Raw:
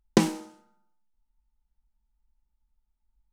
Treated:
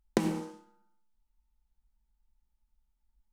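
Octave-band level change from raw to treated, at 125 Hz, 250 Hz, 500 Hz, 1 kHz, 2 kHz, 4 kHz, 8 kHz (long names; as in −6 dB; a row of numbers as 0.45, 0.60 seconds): −6.5, −6.5, −5.5, −6.5, −6.5, −10.0, −9.5 decibels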